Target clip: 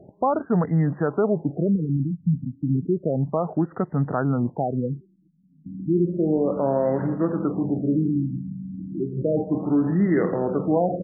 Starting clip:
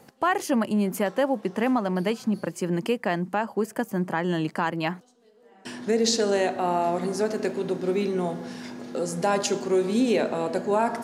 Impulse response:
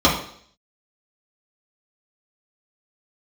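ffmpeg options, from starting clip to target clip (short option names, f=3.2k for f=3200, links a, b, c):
-filter_complex "[0:a]asetrate=34006,aresample=44100,atempo=1.29684,aexciter=amount=11.6:drive=6.3:freq=4.2k,asplit=2[a][b];[b]alimiter=limit=-22dB:level=0:latency=1:release=24,volume=-1dB[c];[a][c]amix=inputs=2:normalize=0,afftfilt=real='re*lt(b*sr/1024,280*pow(2100/280,0.5+0.5*sin(2*PI*0.32*pts/sr)))':imag='im*lt(b*sr/1024,280*pow(2100/280,0.5+0.5*sin(2*PI*0.32*pts/sr)))':win_size=1024:overlap=0.75"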